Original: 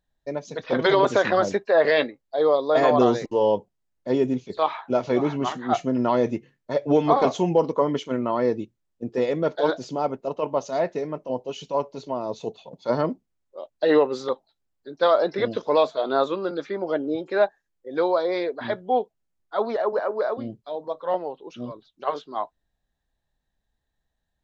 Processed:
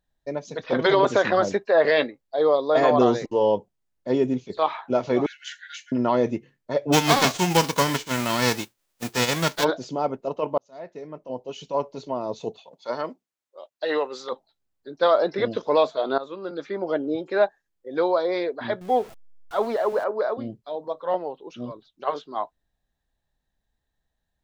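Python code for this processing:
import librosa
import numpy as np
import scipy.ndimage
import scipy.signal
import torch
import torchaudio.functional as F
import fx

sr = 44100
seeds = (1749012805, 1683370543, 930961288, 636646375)

y = fx.brickwall_highpass(x, sr, low_hz=1400.0, at=(5.26, 5.92))
y = fx.envelope_flatten(y, sr, power=0.3, at=(6.92, 9.63), fade=0.02)
y = fx.highpass(y, sr, hz=950.0, slope=6, at=(12.59, 14.31), fade=0.02)
y = fx.zero_step(y, sr, step_db=-39.0, at=(18.81, 20.04))
y = fx.edit(y, sr, fx.fade_in_span(start_s=10.58, length_s=1.27),
    fx.fade_in_from(start_s=16.18, length_s=0.61, floor_db=-17.0), tone=tone)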